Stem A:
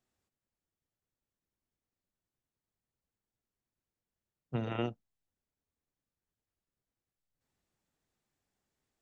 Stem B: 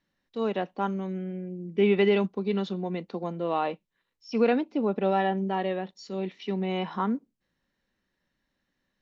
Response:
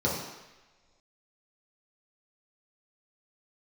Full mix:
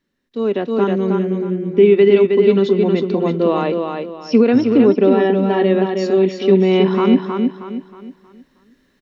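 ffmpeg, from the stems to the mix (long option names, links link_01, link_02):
-filter_complex "[0:a]volume=-5dB[link_01];[1:a]alimiter=limit=-19.5dB:level=0:latency=1:release=283,volume=2.5dB,asplit=2[link_02][link_03];[link_03]volume=-5dB,aecho=0:1:316|632|948|1264|1580:1|0.33|0.109|0.0359|0.0119[link_04];[link_01][link_02][link_04]amix=inputs=3:normalize=0,equalizer=frequency=250:width_type=o:width=0.33:gain=9,equalizer=frequency=400:width_type=o:width=0.33:gain=9,equalizer=frequency=800:width_type=o:width=0.33:gain=-6,dynaudnorm=framelen=200:gausssize=7:maxgain=12.5dB"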